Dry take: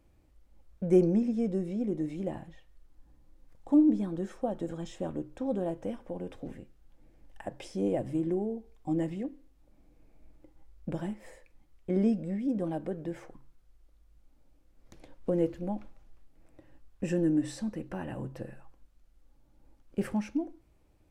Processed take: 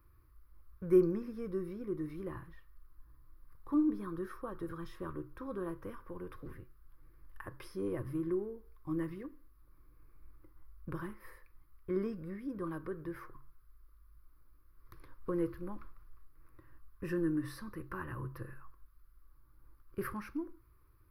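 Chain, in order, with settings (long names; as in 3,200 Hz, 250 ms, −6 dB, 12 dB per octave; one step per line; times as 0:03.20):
drawn EQ curve 120 Hz 0 dB, 230 Hz −16 dB, 370 Hz −3 dB, 750 Hz −22 dB, 1,100 Hz +10 dB, 3,000 Hz −12 dB, 4,900 Hz −5 dB, 7,500 Hz −26 dB, 11,000 Hz +8 dB
level +1 dB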